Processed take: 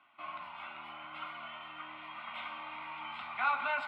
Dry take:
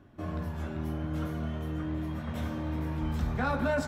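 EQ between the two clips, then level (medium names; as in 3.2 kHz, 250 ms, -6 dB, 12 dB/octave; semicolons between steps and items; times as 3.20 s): high-pass 1.3 kHz 12 dB/octave; resonant low-pass 2.2 kHz, resonance Q 1.7; static phaser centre 1.7 kHz, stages 6; +7.5 dB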